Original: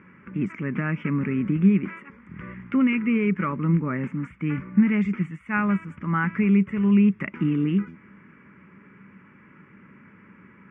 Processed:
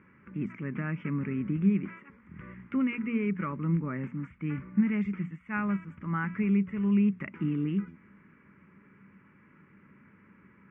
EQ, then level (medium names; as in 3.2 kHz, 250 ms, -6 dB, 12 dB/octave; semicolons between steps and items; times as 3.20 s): distance through air 82 m; bass shelf 82 Hz +7.5 dB; hum notches 60/120/180/240 Hz; -7.5 dB